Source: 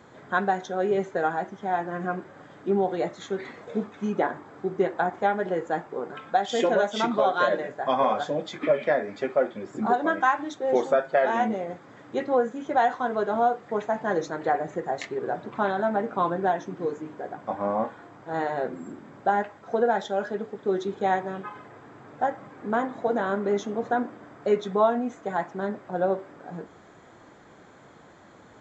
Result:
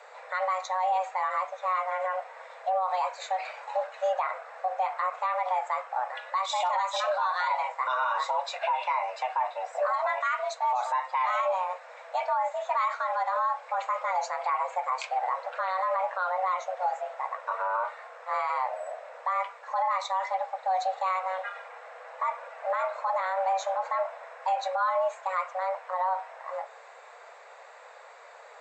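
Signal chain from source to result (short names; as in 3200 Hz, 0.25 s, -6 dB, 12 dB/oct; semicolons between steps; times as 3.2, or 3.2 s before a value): dynamic EQ 1400 Hz, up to -7 dB, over -46 dBFS, Q 5.7; limiter -21.5 dBFS, peak gain reduction 11 dB; frequency shift +370 Hz; gain +2 dB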